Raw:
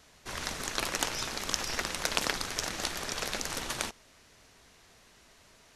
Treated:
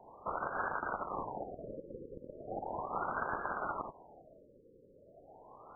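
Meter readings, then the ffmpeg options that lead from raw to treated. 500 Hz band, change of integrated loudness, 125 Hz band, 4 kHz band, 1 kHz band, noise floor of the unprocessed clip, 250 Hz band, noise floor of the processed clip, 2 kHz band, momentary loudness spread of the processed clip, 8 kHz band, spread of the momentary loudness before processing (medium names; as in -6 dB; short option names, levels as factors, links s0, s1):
-1.0 dB, -7.0 dB, -6.5 dB, under -40 dB, +1.5 dB, -60 dBFS, -5.0 dB, -62 dBFS, -7.0 dB, 21 LU, under -40 dB, 6 LU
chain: -af "acompressor=threshold=0.02:ratio=6,lowpass=f=2200:t=q:w=0.5098,lowpass=f=2200:t=q:w=0.6013,lowpass=f=2200:t=q:w=0.9,lowpass=f=2200:t=q:w=2.563,afreqshift=-2600,alimiter=level_in=3.35:limit=0.0631:level=0:latency=1:release=155,volume=0.299,afftfilt=real='re*lt(b*sr/1024,550*pow(1700/550,0.5+0.5*sin(2*PI*0.37*pts/sr)))':imag='im*lt(b*sr/1024,550*pow(1700/550,0.5+0.5*sin(2*PI*0.37*pts/sr)))':win_size=1024:overlap=0.75,volume=4.73"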